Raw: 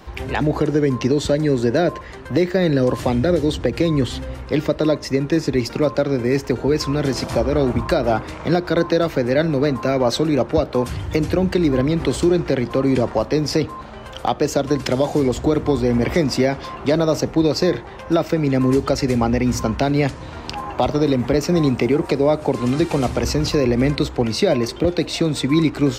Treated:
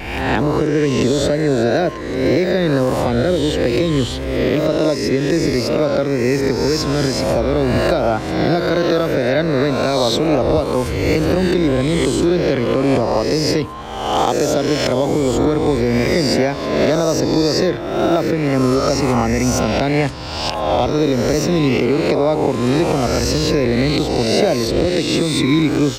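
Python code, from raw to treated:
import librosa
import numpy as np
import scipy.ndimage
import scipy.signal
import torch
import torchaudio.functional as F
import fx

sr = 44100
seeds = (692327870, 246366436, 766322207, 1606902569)

y = fx.spec_swells(x, sr, rise_s=1.28)
y = fx.recorder_agc(y, sr, target_db=-5.0, rise_db_per_s=8.5, max_gain_db=30)
y = fx.wow_flutter(y, sr, seeds[0], rate_hz=2.1, depth_cents=36.0)
y = F.gain(torch.from_numpy(y), -1.5).numpy()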